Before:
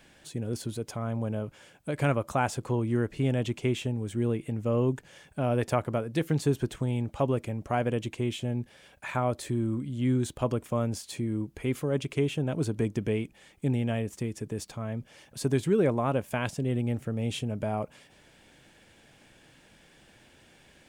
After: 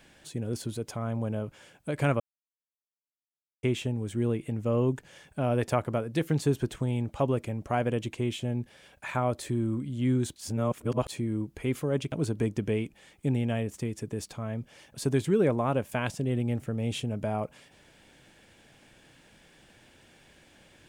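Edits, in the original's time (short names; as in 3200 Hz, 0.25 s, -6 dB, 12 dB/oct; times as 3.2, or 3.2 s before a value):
2.2–3.63 mute
10.36–11.08 reverse
12.12–12.51 cut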